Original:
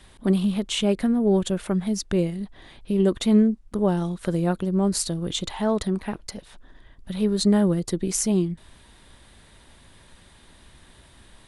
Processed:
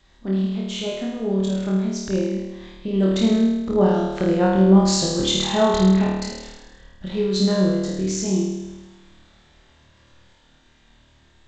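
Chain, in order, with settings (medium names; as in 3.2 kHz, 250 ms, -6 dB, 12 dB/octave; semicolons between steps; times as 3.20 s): Doppler pass-by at 5.19 s, 6 m/s, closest 7.8 m; flutter echo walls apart 4.5 m, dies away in 1.1 s; trim +3.5 dB; G.722 64 kbps 16 kHz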